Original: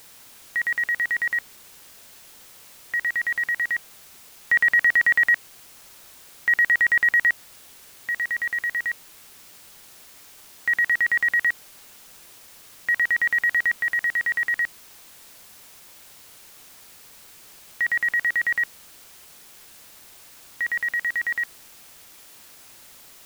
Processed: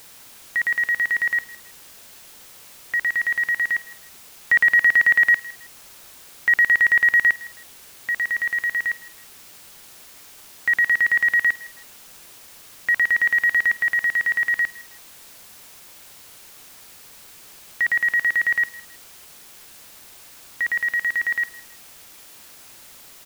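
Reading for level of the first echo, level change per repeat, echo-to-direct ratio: -20.5 dB, -10.5 dB, -20.0 dB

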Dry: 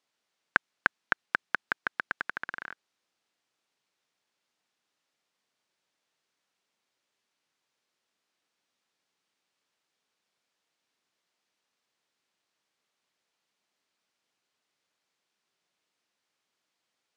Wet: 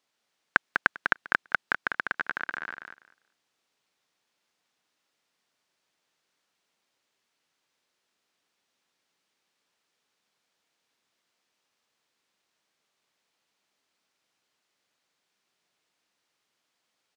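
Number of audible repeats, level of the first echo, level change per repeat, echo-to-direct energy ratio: 2, -6.0 dB, -16.0 dB, -6.0 dB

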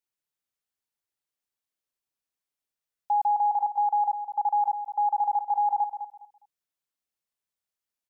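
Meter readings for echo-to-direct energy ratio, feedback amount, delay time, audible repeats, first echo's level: -10.0 dB, 23%, 205 ms, 2, -10.0 dB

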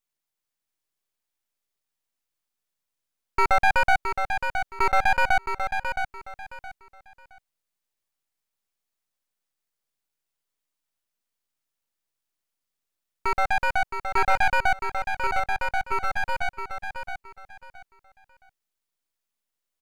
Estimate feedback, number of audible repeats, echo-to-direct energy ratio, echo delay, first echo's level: 25%, 3, -6.5 dB, 668 ms, -7.0 dB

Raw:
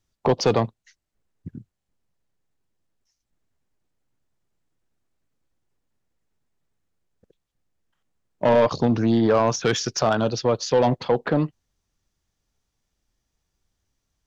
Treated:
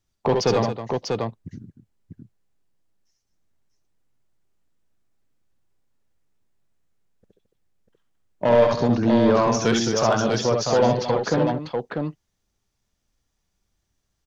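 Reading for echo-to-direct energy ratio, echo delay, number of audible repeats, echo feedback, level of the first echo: -0.5 dB, 66 ms, 3, no regular repeats, -5.0 dB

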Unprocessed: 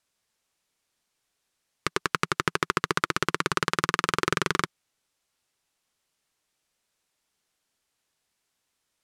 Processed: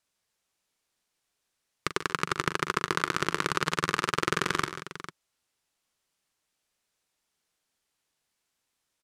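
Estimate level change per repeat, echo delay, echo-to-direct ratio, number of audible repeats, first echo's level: no regular repeats, 41 ms, -8.5 dB, 3, -12.0 dB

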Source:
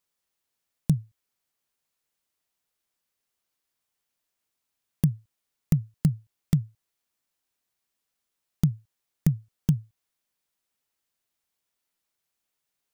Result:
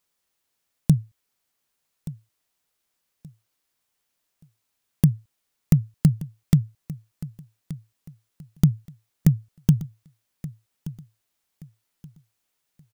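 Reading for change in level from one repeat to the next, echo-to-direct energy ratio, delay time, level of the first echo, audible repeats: -10.5 dB, -16.5 dB, 1176 ms, -17.0 dB, 2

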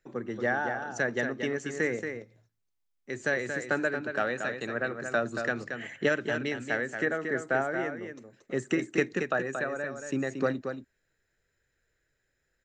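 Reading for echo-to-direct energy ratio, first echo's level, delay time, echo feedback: -7.0 dB, -7.0 dB, 229 ms, no regular repeats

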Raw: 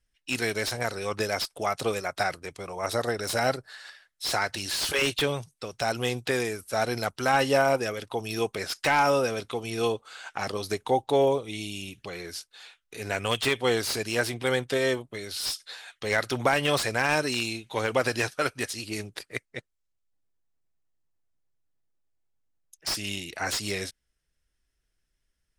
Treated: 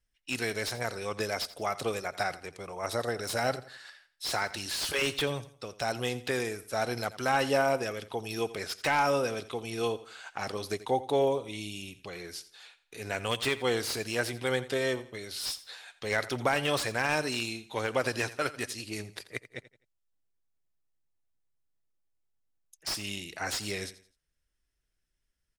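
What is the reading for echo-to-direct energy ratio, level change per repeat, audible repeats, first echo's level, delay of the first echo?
-16.0 dB, -9.5 dB, 2, -16.5 dB, 85 ms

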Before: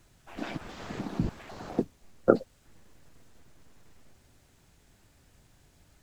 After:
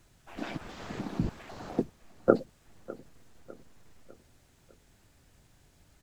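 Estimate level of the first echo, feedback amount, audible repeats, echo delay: -20.0 dB, 47%, 3, 602 ms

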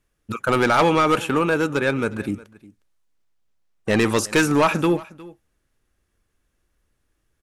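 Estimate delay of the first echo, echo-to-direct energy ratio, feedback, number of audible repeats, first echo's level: 359 ms, -21.0 dB, no regular repeats, 1, -21.0 dB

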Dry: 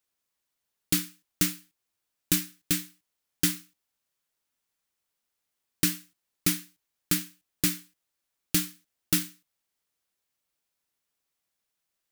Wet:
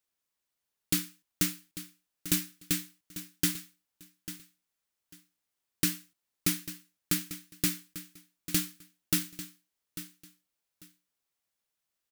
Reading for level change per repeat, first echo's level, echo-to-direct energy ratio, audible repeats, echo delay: -13.5 dB, -13.5 dB, -13.5 dB, 2, 845 ms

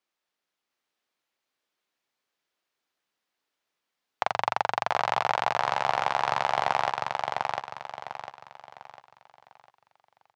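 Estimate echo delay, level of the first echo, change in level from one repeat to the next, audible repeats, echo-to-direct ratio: 701 ms, -3.0 dB, -9.0 dB, 4, -2.5 dB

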